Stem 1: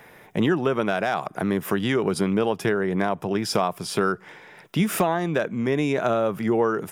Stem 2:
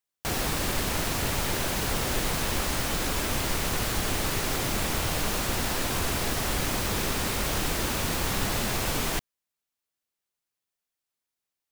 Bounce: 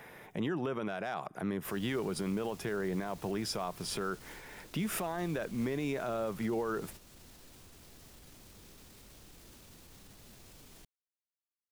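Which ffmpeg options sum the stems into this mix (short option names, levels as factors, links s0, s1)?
-filter_complex "[0:a]alimiter=limit=0.168:level=0:latency=1:release=19,volume=0.708,asplit=2[s0][s1];[1:a]alimiter=limit=0.0631:level=0:latency=1:release=34,acrossover=split=460|3000[s2][s3][s4];[s3]acompressor=threshold=0.00447:ratio=2.5[s5];[s2][s5][s4]amix=inputs=3:normalize=0,adelay=1400,volume=0.2,asplit=2[s6][s7];[s7]volume=0.447[s8];[s1]apad=whole_len=578233[s9];[s6][s9]sidechaingate=range=0.0224:threshold=0.00447:ratio=16:detection=peak[s10];[s8]aecho=0:1:255:1[s11];[s0][s10][s11]amix=inputs=3:normalize=0,alimiter=level_in=1.19:limit=0.0631:level=0:latency=1:release=474,volume=0.841"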